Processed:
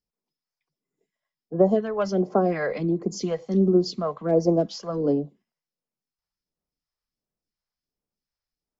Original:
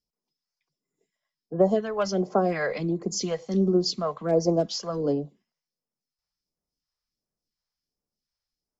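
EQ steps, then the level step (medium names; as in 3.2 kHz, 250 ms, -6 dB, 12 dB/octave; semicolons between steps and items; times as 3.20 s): dynamic bell 280 Hz, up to +4 dB, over -36 dBFS, Q 0.92; treble shelf 3.9 kHz -9 dB; 0.0 dB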